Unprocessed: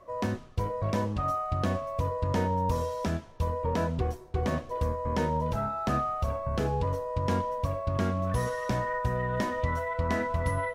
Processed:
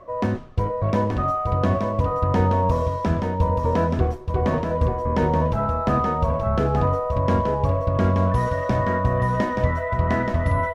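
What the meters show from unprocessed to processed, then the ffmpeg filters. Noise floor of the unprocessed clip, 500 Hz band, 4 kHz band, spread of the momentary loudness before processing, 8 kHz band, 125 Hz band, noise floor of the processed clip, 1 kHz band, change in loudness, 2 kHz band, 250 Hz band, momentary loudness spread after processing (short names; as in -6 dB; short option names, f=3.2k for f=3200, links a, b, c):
-48 dBFS, +8.0 dB, +2.0 dB, 3 LU, n/a, +9.0 dB, -28 dBFS, +7.5 dB, +8.0 dB, +5.5 dB, +8.5 dB, 3 LU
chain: -af "areverse,acompressor=mode=upward:threshold=-32dB:ratio=2.5,areverse,lowpass=f=1.9k:p=1,aecho=1:1:877:0.562,volume=7.5dB"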